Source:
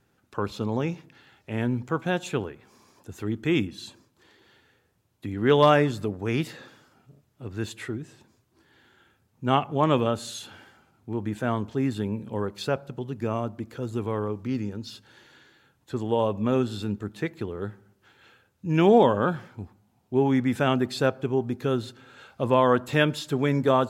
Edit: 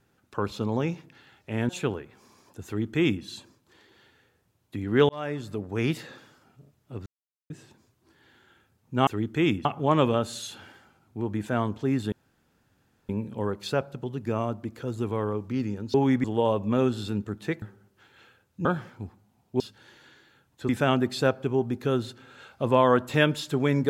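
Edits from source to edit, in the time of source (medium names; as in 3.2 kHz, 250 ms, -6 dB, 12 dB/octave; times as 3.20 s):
1.69–2.19 s: delete
3.16–3.74 s: copy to 9.57 s
5.59–6.32 s: fade in
7.56–8.00 s: mute
12.04 s: insert room tone 0.97 s
14.89–15.98 s: swap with 20.18–20.48 s
17.36–17.67 s: delete
18.70–19.23 s: delete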